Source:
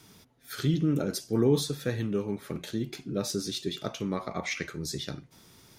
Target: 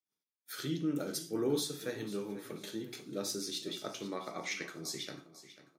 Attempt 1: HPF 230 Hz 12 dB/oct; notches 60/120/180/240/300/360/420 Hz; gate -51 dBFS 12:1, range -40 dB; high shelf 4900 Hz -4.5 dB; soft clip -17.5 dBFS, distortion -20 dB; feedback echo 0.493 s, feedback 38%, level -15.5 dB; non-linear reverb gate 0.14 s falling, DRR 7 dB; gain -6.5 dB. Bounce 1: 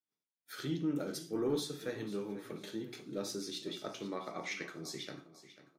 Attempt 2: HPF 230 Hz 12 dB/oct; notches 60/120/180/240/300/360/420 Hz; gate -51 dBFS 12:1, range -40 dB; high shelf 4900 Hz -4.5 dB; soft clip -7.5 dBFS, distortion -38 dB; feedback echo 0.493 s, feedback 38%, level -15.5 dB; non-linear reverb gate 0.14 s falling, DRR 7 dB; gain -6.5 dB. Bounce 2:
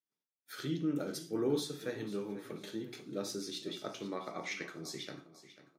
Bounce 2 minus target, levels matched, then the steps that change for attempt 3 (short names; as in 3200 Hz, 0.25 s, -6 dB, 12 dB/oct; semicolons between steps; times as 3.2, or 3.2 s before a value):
8000 Hz band -5.0 dB
change: high shelf 4900 Hz +4 dB